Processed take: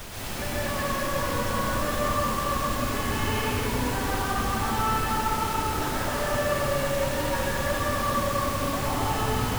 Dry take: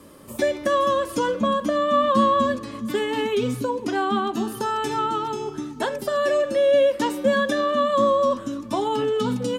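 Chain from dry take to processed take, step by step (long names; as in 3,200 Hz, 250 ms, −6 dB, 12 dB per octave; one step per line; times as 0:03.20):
sub-octave generator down 2 octaves, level −5 dB
Butterworth low-pass 3,000 Hz 48 dB per octave
parametric band 370 Hz −14 dB 1.4 octaves
downward compressor 10 to 1, threshold −32 dBFS, peak gain reduction 15 dB
background noise pink −38 dBFS
dense smooth reverb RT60 4 s, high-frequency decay 0.5×, pre-delay 100 ms, DRR −8.5 dB
level −1.5 dB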